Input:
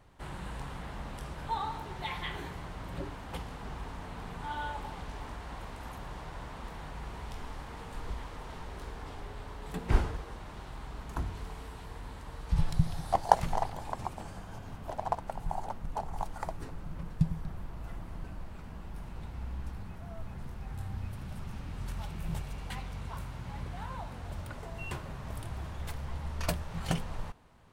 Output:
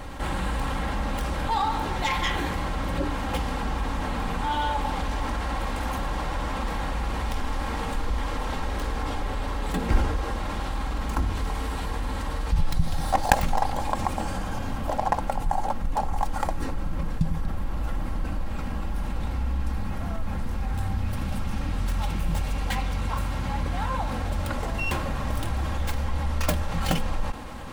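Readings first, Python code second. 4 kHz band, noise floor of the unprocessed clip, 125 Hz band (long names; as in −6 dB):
+11.5 dB, −45 dBFS, +8.0 dB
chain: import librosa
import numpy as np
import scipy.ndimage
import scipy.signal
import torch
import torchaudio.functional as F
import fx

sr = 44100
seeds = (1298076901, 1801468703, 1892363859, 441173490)

y = fx.tracing_dist(x, sr, depth_ms=0.35)
y = y + 0.5 * np.pad(y, (int(3.7 * sr / 1000.0), 0))[:len(y)]
y = fx.env_flatten(y, sr, amount_pct=50)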